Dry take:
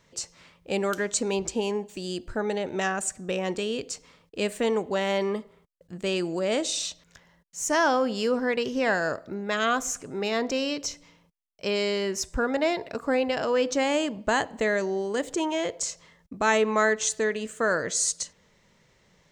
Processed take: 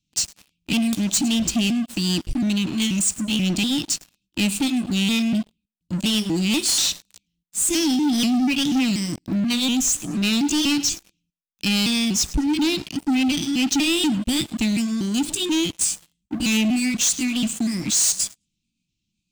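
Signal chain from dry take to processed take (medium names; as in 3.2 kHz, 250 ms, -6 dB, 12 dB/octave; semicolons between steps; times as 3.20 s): pitch shift switched off and on +2.5 st, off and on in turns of 242 ms; Chebyshev band-stop 320–2500 Hz, order 5; on a send: thinning echo 105 ms, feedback 28%, high-pass 160 Hz, level -21.5 dB; on the sum: waveshaping leveller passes 5; trim -2.5 dB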